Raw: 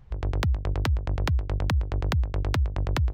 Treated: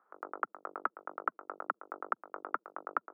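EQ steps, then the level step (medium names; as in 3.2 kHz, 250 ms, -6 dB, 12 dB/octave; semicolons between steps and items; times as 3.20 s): Bessel high-pass 490 Hz, order 8; four-pole ladder low-pass 1.4 kHz, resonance 80%; distance through air 430 m; +6.0 dB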